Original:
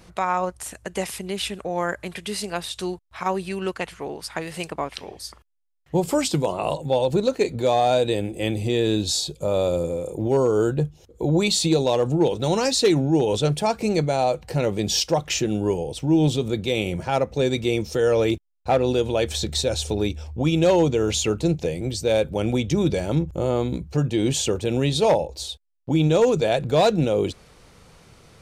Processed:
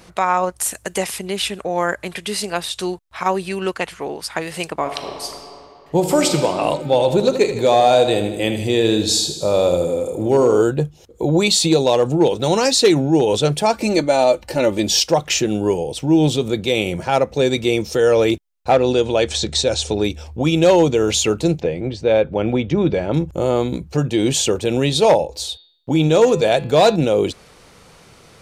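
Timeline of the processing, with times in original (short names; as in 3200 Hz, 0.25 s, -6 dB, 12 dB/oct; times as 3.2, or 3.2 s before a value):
0.57–0.98 high shelf 6100 Hz +10.5 dB
4.78–6.34 reverb throw, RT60 2.7 s, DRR 4 dB
6.85–10.62 feedback echo 78 ms, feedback 58%, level -9.5 dB
13.73–14.89 comb 3.4 ms, depth 62%
18.73–20.04 LPF 8500 Hz 24 dB/oct
21.6–23.14 LPF 2500 Hz
25.26–26.96 de-hum 169 Hz, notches 28
whole clip: low shelf 150 Hz -8 dB; gain +6 dB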